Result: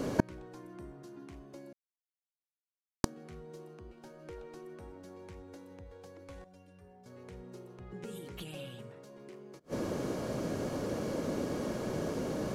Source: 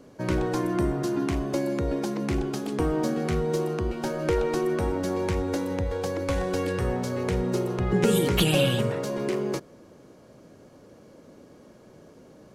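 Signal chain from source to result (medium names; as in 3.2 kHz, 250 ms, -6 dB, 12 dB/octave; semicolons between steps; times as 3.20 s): 1.73–3.04 s: mute; inverted gate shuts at -25 dBFS, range -38 dB; 6.44–7.06 s: inharmonic resonator 86 Hz, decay 0.31 s, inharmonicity 0.03; trim +15.5 dB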